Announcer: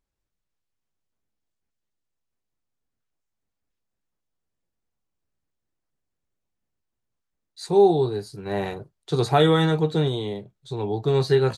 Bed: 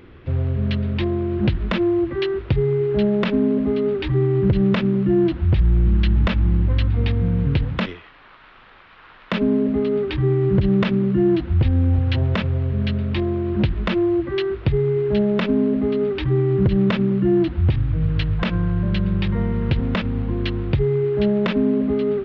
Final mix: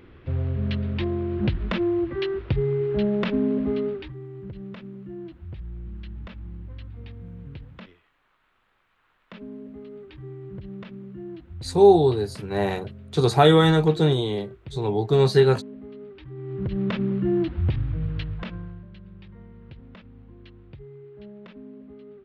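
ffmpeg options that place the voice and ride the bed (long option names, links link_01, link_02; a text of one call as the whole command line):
ffmpeg -i stem1.wav -i stem2.wav -filter_complex "[0:a]adelay=4050,volume=2.5dB[link_01];[1:a]volume=10.5dB,afade=type=out:start_time=3.78:duration=0.36:silence=0.158489,afade=type=in:start_time=16.35:duration=0.7:silence=0.177828,afade=type=out:start_time=17.81:duration=1.06:silence=0.112202[link_02];[link_01][link_02]amix=inputs=2:normalize=0" out.wav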